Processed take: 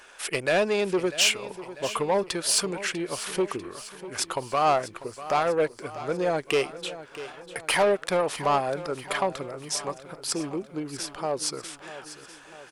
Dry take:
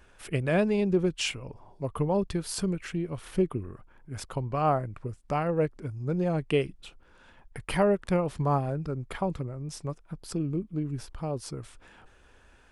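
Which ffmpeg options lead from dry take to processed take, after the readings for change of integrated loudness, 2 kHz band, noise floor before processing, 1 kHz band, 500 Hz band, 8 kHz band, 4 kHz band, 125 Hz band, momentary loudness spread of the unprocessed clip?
+3.0 dB, +8.5 dB, −58 dBFS, +6.0 dB, +3.5 dB, +12.5 dB, +11.0 dB, −9.5 dB, 15 LU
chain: -filter_complex "[0:a]asplit=2[link_01][link_02];[link_02]highpass=frequency=720:poles=1,volume=17dB,asoftclip=type=tanh:threshold=-12.5dB[link_03];[link_01][link_03]amix=inputs=2:normalize=0,lowpass=frequency=5300:poles=1,volume=-6dB,bass=frequency=250:gain=-11,treble=frequency=4000:gain=7,aecho=1:1:645|1290|1935|2580|3225:0.188|0.104|0.057|0.0313|0.0172"

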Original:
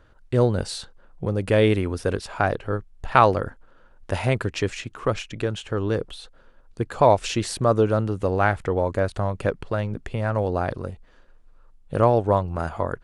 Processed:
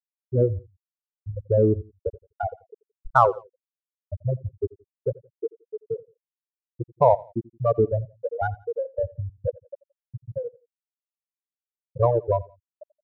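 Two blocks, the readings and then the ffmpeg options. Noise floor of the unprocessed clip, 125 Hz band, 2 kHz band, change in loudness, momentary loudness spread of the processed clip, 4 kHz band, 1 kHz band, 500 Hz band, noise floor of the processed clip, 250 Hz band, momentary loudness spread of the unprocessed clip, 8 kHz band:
−53 dBFS, −4.0 dB, −10.0 dB, −2.5 dB, 18 LU, below −25 dB, −3.0 dB, −2.5 dB, below −85 dBFS, −7.5 dB, 13 LU, below −25 dB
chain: -filter_complex "[0:a]afftfilt=real='re*gte(hypot(re,im),0.562)':imag='im*gte(hypot(re,im),0.562)':win_size=1024:overlap=0.75,adynamicsmooth=sensitivity=4:basefreq=5100,asplit=2[link_01][link_02];[link_02]aecho=0:1:86|172:0.0794|0.0254[link_03];[link_01][link_03]amix=inputs=2:normalize=0"

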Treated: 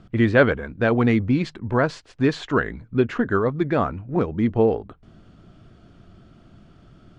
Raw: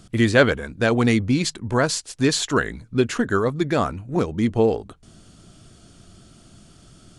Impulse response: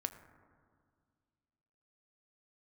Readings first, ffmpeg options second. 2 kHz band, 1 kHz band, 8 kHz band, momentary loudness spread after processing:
−1.5 dB, −0.5 dB, below −20 dB, 7 LU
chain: -af "lowpass=2200"

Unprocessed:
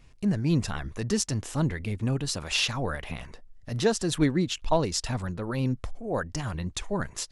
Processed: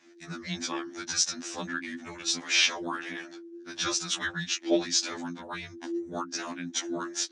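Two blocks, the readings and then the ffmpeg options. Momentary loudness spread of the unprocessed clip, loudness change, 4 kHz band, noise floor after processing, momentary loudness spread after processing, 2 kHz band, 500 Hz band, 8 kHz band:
9 LU, −1.5 dB, +3.5 dB, −49 dBFS, 14 LU, +3.5 dB, −6.0 dB, +4.0 dB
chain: -af "afreqshift=-350,highpass=410,equalizer=frequency=1700:width_type=q:width=4:gain=8,equalizer=frequency=3700:width_type=q:width=4:gain=4,equalizer=frequency=5900:width_type=q:width=4:gain=8,lowpass=frequency=7500:width=0.5412,lowpass=frequency=7500:width=1.3066,afftfilt=real='re*2*eq(mod(b,4),0)':imag='im*2*eq(mod(b,4),0)':win_size=2048:overlap=0.75,volume=2.5dB"

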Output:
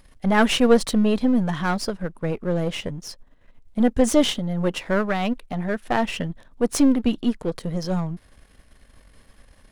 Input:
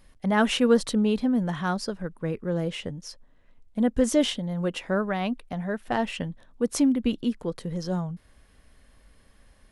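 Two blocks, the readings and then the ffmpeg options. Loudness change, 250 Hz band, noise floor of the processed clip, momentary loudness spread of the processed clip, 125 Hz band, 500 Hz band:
+4.0 dB, +4.0 dB, −55 dBFS, 12 LU, +4.0 dB, +4.0 dB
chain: -af "aeval=exprs='if(lt(val(0),0),0.447*val(0),val(0))':channel_layout=same,volume=7dB"

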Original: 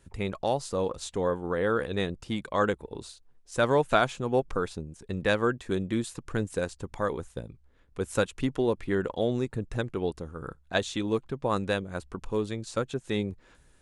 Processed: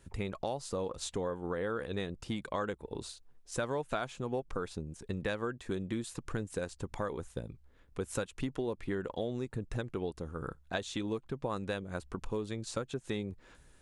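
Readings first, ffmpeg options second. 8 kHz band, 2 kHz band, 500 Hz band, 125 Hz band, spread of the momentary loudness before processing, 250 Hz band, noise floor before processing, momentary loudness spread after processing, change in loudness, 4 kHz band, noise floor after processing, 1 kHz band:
−3.0 dB, −9.0 dB, −8.5 dB, −6.0 dB, 12 LU, −7.0 dB, −61 dBFS, 6 LU, −8.0 dB, −7.0 dB, −62 dBFS, −9.5 dB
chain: -af "acompressor=threshold=-33dB:ratio=4"

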